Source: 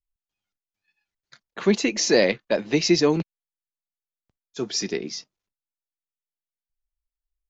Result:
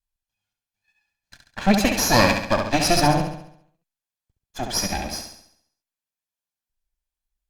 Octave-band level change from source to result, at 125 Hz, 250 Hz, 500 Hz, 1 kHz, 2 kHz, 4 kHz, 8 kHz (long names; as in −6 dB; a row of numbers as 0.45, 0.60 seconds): +6.5 dB, +1.0 dB, −2.0 dB, +14.0 dB, +4.5 dB, +2.5 dB, can't be measured